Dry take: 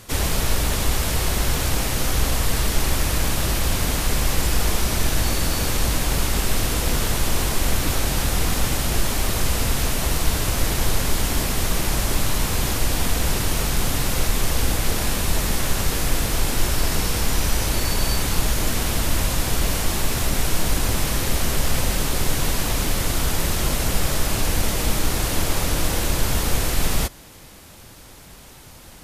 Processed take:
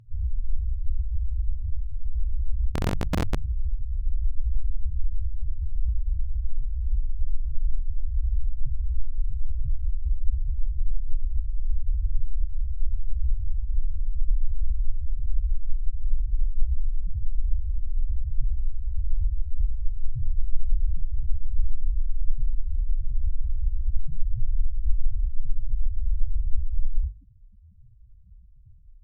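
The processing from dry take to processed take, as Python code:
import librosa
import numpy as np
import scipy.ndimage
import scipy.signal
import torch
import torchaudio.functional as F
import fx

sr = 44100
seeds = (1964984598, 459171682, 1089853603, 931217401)

y = fx.low_shelf(x, sr, hz=300.0, db=4.5)
y = fx.spec_topn(y, sr, count=2)
y = fx.rider(y, sr, range_db=10, speed_s=2.0)
y = fx.overflow_wrap(y, sr, gain_db=16.5, at=(2.72, 3.38))
y = fx.high_shelf(y, sr, hz=11000.0, db=-11.0)
y = fx.hum_notches(y, sr, base_hz=50, count=3)
y = F.gain(torch.from_numpy(y), -2.0).numpy()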